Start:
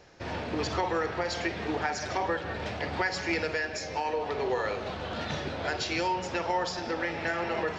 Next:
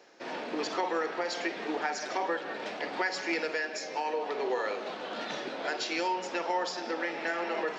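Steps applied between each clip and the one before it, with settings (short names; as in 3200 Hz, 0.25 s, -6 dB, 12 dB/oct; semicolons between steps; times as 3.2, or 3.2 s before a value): HPF 240 Hz 24 dB/oct; gain -1.5 dB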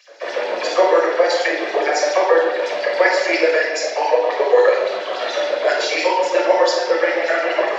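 small resonant body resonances 570/2000 Hz, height 9 dB, ringing for 35 ms; LFO high-pass sine 7.2 Hz 400–5600 Hz; shoebox room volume 2500 m³, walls furnished, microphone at 5.7 m; gain +5.5 dB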